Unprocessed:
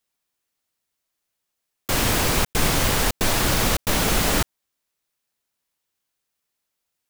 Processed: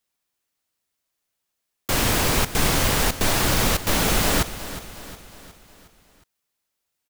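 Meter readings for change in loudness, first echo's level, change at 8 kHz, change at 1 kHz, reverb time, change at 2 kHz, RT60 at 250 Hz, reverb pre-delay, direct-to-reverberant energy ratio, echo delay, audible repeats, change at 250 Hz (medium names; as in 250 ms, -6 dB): 0.0 dB, -14.0 dB, 0.0 dB, +0.5 dB, no reverb, 0.0 dB, no reverb, no reverb, no reverb, 362 ms, 4, 0.0 dB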